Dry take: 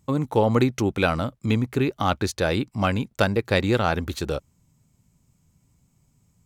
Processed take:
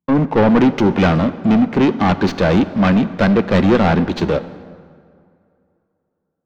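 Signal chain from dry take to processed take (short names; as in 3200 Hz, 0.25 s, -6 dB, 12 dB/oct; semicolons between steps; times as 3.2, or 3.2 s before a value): tracing distortion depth 0.2 ms; resonant low shelf 140 Hz -7 dB, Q 3; notch 1300 Hz, Q 10; sample leveller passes 5; air absorption 210 m; plate-style reverb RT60 3.6 s, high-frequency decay 0.6×, DRR 12.5 dB; three-band expander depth 40%; gain -4.5 dB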